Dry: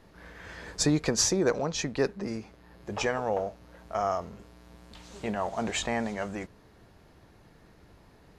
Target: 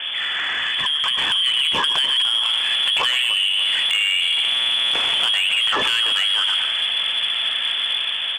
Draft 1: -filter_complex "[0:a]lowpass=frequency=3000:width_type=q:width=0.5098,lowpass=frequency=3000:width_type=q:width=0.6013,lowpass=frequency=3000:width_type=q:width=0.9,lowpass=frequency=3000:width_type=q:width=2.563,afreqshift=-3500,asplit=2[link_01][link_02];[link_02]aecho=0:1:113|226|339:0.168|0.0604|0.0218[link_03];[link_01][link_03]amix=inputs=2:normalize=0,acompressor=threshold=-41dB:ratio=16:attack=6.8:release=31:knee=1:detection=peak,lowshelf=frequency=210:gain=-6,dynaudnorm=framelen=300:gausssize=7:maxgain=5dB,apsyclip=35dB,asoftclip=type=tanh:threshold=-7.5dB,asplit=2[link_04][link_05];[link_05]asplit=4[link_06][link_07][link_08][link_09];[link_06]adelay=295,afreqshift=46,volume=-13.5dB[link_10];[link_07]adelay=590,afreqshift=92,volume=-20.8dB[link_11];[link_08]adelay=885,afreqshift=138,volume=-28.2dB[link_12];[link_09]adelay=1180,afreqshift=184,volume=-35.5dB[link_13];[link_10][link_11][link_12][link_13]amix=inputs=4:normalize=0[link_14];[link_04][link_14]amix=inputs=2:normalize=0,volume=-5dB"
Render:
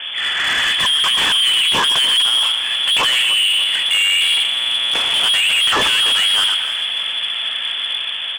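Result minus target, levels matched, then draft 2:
downward compressor: peak gain reduction −10.5 dB
-filter_complex "[0:a]lowpass=frequency=3000:width_type=q:width=0.5098,lowpass=frequency=3000:width_type=q:width=0.6013,lowpass=frequency=3000:width_type=q:width=0.9,lowpass=frequency=3000:width_type=q:width=2.563,afreqshift=-3500,asplit=2[link_01][link_02];[link_02]aecho=0:1:113|226|339:0.168|0.0604|0.0218[link_03];[link_01][link_03]amix=inputs=2:normalize=0,acompressor=threshold=-52dB:ratio=16:attack=6.8:release=31:knee=1:detection=peak,lowshelf=frequency=210:gain=-6,dynaudnorm=framelen=300:gausssize=7:maxgain=5dB,apsyclip=35dB,asoftclip=type=tanh:threshold=-7.5dB,asplit=2[link_04][link_05];[link_05]asplit=4[link_06][link_07][link_08][link_09];[link_06]adelay=295,afreqshift=46,volume=-13.5dB[link_10];[link_07]adelay=590,afreqshift=92,volume=-20.8dB[link_11];[link_08]adelay=885,afreqshift=138,volume=-28.2dB[link_12];[link_09]adelay=1180,afreqshift=184,volume=-35.5dB[link_13];[link_10][link_11][link_12][link_13]amix=inputs=4:normalize=0[link_14];[link_04][link_14]amix=inputs=2:normalize=0,volume=-5dB"

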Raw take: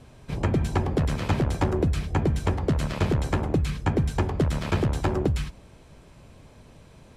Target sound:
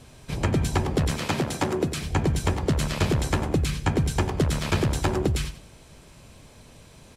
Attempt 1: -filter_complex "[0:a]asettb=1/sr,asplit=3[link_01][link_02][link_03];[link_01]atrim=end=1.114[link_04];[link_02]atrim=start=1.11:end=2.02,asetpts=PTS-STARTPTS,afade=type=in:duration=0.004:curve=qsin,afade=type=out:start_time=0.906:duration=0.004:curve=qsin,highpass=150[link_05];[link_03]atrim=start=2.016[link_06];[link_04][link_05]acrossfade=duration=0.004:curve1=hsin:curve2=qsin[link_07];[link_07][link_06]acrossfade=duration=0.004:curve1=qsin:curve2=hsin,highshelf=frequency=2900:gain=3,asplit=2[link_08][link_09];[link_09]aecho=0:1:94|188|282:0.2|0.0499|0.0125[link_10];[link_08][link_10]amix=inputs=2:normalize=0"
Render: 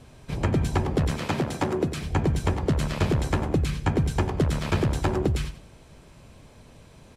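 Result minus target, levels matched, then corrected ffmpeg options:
8,000 Hz band −5.5 dB
-filter_complex "[0:a]asettb=1/sr,asplit=3[link_01][link_02][link_03];[link_01]atrim=end=1.114[link_04];[link_02]atrim=start=1.11:end=2.02,asetpts=PTS-STARTPTS,afade=type=in:duration=0.004:curve=qsin,afade=type=out:start_time=0.906:duration=0.004:curve=qsin,highpass=150[link_05];[link_03]atrim=start=2.016[link_06];[link_04][link_05]acrossfade=duration=0.004:curve1=hsin:curve2=qsin[link_07];[link_07][link_06]acrossfade=duration=0.004:curve1=qsin:curve2=hsin,highshelf=frequency=2900:gain=10,asplit=2[link_08][link_09];[link_09]aecho=0:1:94|188|282:0.2|0.0499|0.0125[link_10];[link_08][link_10]amix=inputs=2:normalize=0"

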